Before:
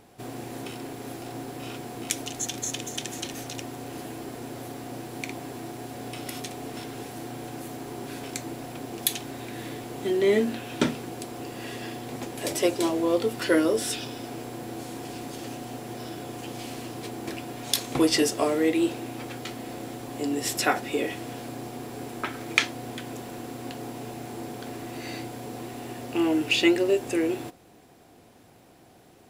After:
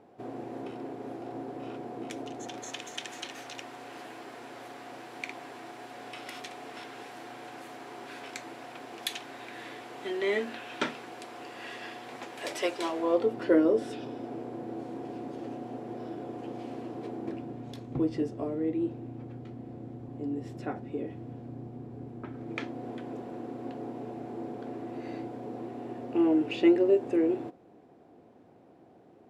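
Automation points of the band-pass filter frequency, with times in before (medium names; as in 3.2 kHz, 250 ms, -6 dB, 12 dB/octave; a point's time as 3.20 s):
band-pass filter, Q 0.67
2.37 s 470 Hz
2.81 s 1.5 kHz
12.90 s 1.5 kHz
13.37 s 380 Hz
17.11 s 380 Hz
17.88 s 110 Hz
22.19 s 110 Hz
22.87 s 370 Hz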